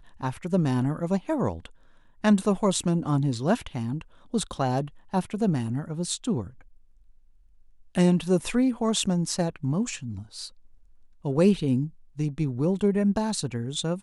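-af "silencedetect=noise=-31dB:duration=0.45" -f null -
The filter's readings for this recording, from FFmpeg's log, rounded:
silence_start: 1.66
silence_end: 2.24 | silence_duration: 0.59
silence_start: 6.47
silence_end: 7.95 | silence_duration: 1.48
silence_start: 10.46
silence_end: 11.25 | silence_duration: 0.79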